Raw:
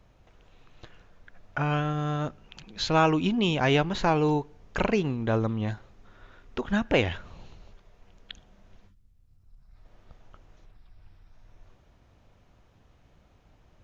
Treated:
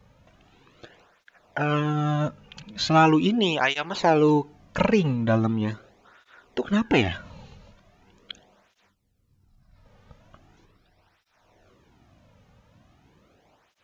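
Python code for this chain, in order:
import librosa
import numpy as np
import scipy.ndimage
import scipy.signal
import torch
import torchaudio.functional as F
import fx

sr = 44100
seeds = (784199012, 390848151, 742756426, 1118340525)

y = fx.flanger_cancel(x, sr, hz=0.4, depth_ms=3.1)
y = y * librosa.db_to_amplitude(6.5)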